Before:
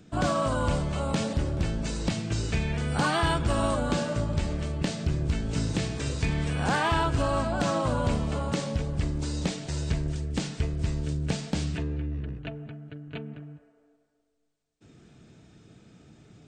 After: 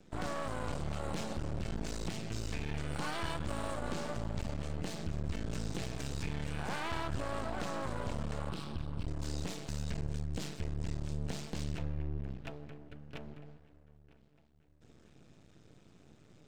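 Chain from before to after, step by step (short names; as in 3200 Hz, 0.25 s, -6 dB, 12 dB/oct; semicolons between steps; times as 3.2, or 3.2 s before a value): 8.49–9.08 fixed phaser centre 1900 Hz, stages 6; limiter -23 dBFS, peak gain reduction 6 dB; dark delay 0.953 s, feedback 50%, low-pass 3100 Hz, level -20 dB; half-wave rectifier; gain -3 dB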